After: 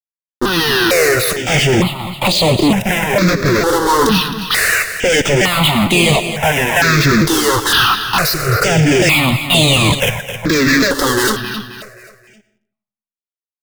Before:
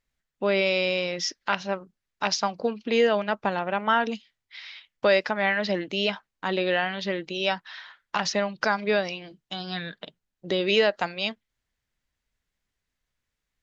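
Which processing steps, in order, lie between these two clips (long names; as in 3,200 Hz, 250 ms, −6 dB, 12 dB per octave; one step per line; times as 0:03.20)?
pitch shifter swept by a sawtooth −9 semitones, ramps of 451 ms
high-shelf EQ 3,500 Hz +10.5 dB
reversed playback
downward compressor, threshold −34 dBFS, peak gain reduction 17.5 dB
reversed playback
fuzz pedal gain 59 dB, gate −57 dBFS
comb and all-pass reverb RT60 0.83 s, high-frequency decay 0.6×, pre-delay 60 ms, DRR 15 dB
in parallel at −7 dB: bit reduction 5 bits
on the sum: repeating echo 265 ms, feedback 39%, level −10.5 dB
healed spectral selection 0:08.35–0:08.57, 390–2,900 Hz both
step-sequenced phaser 2.2 Hz 650–5,500 Hz
level +1.5 dB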